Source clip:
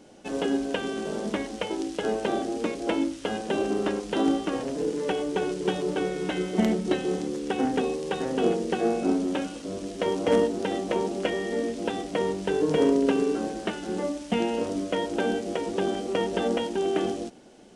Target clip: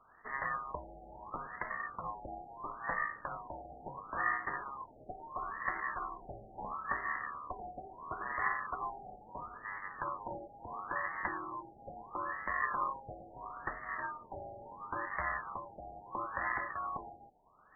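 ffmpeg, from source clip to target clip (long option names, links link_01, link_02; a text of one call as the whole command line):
ffmpeg -i in.wav -af "aeval=exprs='val(0)*sin(2*PI*1500*n/s)':channel_layout=same,acrusher=samples=12:mix=1:aa=0.000001,afftfilt=real='re*lt(b*sr/1024,820*pow(2200/820,0.5+0.5*sin(2*PI*0.74*pts/sr)))':imag='im*lt(b*sr/1024,820*pow(2200/820,0.5+0.5*sin(2*PI*0.74*pts/sr)))':win_size=1024:overlap=0.75,volume=-6dB" out.wav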